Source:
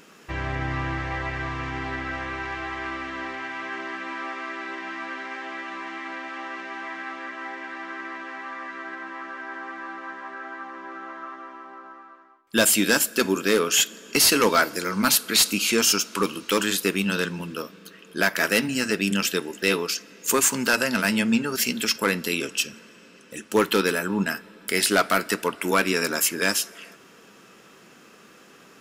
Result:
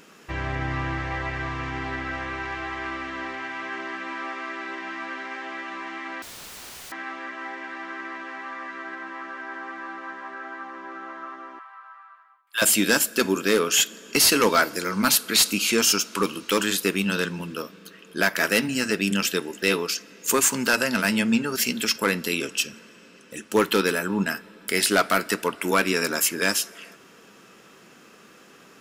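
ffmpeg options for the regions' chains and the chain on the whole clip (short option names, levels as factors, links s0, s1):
-filter_complex "[0:a]asettb=1/sr,asplit=3[s0][s1][s2];[s0]atrim=end=6.224[s3];[s1]atrim=start=6.22:end=6.92,asetpts=PTS-STARTPTS,afade=t=in:d=0.004:c=qsin,afade=t=out:st=0.696:d=0.004:c=qsin,lowshelf=f=260:g=7.5,acrusher=bits=6:mode=log:mix=0:aa=0.000001,aeval=exprs='(mod(66.8*val(0)+1,2)-1)/66.8':c=same[s4];[s2]atrim=start=6.916[s5];[s3][s4]acrossfade=d=0.004:c1=hsin:c2=qsin[s6];[s6][s5]acrossfade=d=0.004:c1=qsin:c2=hsin,asettb=1/sr,asplit=3[s7][s8][s9];[s7]atrim=end=11.594[s10];[s8]atrim=start=11.59:end=12.62,asetpts=PTS-STARTPTS,afade=t=in:d=0.004:c=qsin,afade=t=out:st=1.026:d=0.004:c=qsin,highpass=f=930:w=0.5412,highpass=f=930:w=1.3066,equalizer=f=6000:t=o:w=0.82:g=-10.5[s11];[s9]atrim=start=12.616[s12];[s10][s11]acrossfade=d=0.004:c1=hsin:c2=qsin[s13];[s13][s12]acrossfade=d=0.004:c1=qsin:c2=hsin"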